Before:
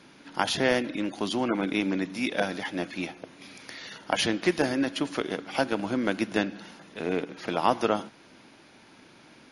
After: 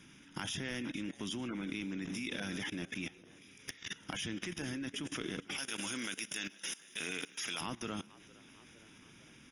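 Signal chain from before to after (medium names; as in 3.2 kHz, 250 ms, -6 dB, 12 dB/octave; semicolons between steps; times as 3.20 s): 5.58–7.61 s: tilt EQ +4.5 dB/octave; in parallel at -2 dB: compression 10:1, threshold -40 dBFS, peak gain reduction 23.5 dB; on the sum: Butterworth band-stop 4.3 kHz, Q 3.3; amplifier tone stack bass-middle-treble 6-0-2; on a send: frequency-shifting echo 459 ms, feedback 55%, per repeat +58 Hz, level -20 dB; on the sum: level held to a coarse grid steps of 19 dB; sine folder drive 3 dB, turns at -36.5 dBFS; trim +11 dB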